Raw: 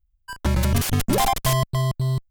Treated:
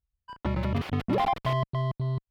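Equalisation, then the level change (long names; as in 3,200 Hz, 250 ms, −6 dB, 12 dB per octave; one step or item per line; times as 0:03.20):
high-pass filter 160 Hz 6 dB per octave
high-frequency loss of the air 380 metres
notch filter 1,600 Hz, Q 9.5
−2.5 dB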